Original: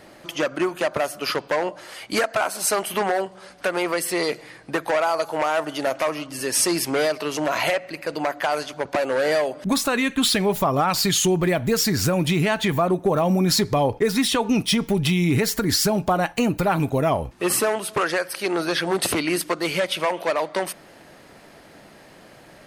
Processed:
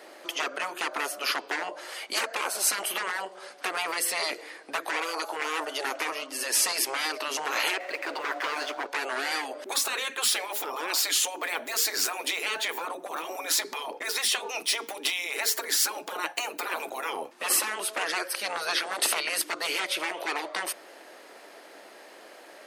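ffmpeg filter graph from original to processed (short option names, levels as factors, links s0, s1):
-filter_complex "[0:a]asettb=1/sr,asplit=3[s0][s1][s2];[s0]atrim=end=7.804[s3];[s1]atrim=start=7.8:end=8.87,asetpts=PTS-STARTPTS,afade=t=in:d=0.004:c=qsin,afade=t=out:st=1.066:d=0.004:c=qsin,asplit=2[s4][s5];[s5]highpass=f=720:p=1,volume=7.08,asoftclip=type=tanh:threshold=0.266[s6];[s4][s6]amix=inputs=2:normalize=0,lowpass=f=1300:p=1,volume=0.501,aeval=exprs='sgn(val(0))*max(abs(val(0))-0.00447,0)':c=same[s7];[s2]atrim=start=8.866[s8];[s3][s7]acrossfade=d=0.004:c1=hsin:c2=qsin[s9];[s9][s8]acrossfade=d=0.004:c1=qsin:c2=hsin,afftfilt=real='re*lt(hypot(re,im),0.224)':imag='im*lt(hypot(re,im),0.224)':win_size=1024:overlap=0.75,highpass=f=340:w=0.5412,highpass=f=340:w=1.3066"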